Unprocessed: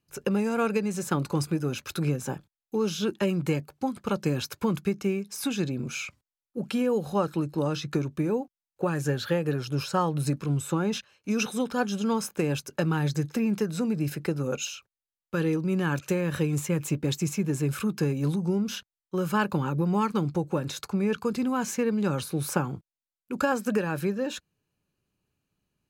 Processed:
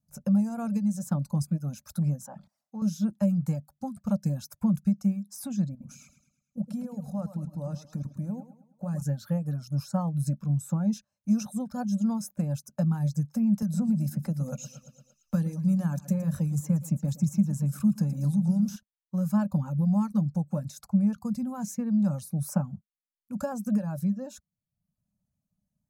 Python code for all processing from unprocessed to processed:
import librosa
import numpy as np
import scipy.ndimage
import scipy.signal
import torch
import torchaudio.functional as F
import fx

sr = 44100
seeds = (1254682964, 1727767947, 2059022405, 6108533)

y = fx.chain(x, sr, fx.bandpass_q(hz=1100.0, q=0.58),
    fx.sustainer(db_per_s=110.0), at=(2.26, 2.82))
y = fx.chain(y, sr, fx.level_steps(step_db=10),
    fx.echo_feedback(ms=106, feedback_pct=49, wet_db=-7), at=(5.7, 9.02))
y = fx.chain(y, sr, fx.echo_feedback(ms=115, feedback_pct=45, wet_db=-11.0),
    fx.band_squash(depth_pct=70), at=(13.62, 18.76))
y = fx.dereverb_blind(y, sr, rt60_s=0.66)
y = fx.curve_eq(y, sr, hz=(120.0, 210.0, 400.0, 600.0, 860.0, 3000.0, 5700.0, 10000.0), db=(0, 6, -28, 0, -9, -24, -6, -4))